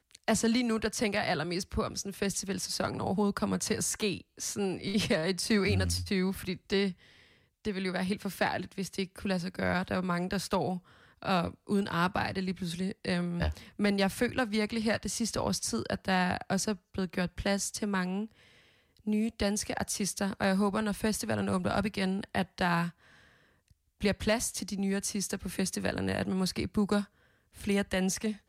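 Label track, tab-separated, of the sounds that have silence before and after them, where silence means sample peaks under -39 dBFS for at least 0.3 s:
7.650000	10.780000	sound
11.230000	18.260000	sound
19.070000	22.900000	sound
24.010000	27.040000	sound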